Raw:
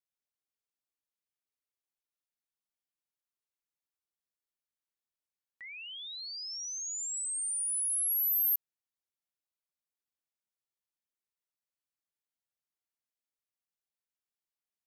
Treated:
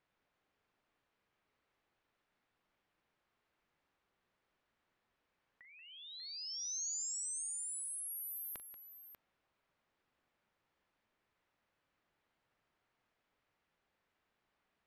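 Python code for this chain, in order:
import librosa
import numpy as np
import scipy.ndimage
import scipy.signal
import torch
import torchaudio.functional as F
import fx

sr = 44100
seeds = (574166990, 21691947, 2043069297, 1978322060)

y = scipy.signal.sosfilt(scipy.signal.butter(2, 2100.0, 'lowpass', fs=sr, output='sos'), x)
y = fx.over_compress(y, sr, threshold_db=-59.0, ratio=-0.5)
y = fx.echo_multitap(y, sr, ms=(41, 184, 591), db=(-12.5, -12.0, -10.5))
y = F.gain(torch.from_numpy(y), 15.5).numpy()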